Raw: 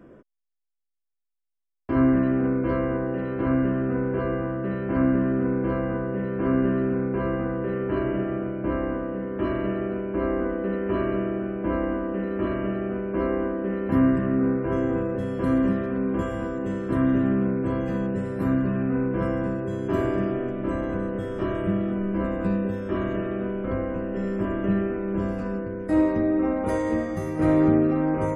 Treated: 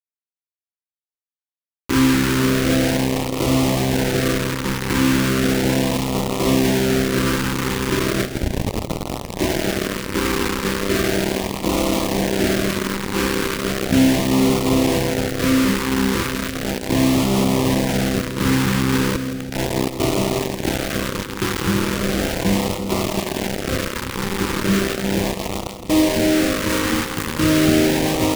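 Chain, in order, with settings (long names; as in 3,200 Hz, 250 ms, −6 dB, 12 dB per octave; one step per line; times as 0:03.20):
0:08.25: tape start 1.20 s
0:11.78–0:12.67: parametric band 290 Hz +2.5 dB 2.4 octaves
0:19.16–0:20.00: compressor whose output falls as the input rises −29 dBFS, ratio −0.5
bit reduction 4 bits
echo with a time of its own for lows and highs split 310 Hz, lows 336 ms, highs 164 ms, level −9.5 dB
auto-filter notch sine 0.36 Hz 640–1,600 Hz
level +4.5 dB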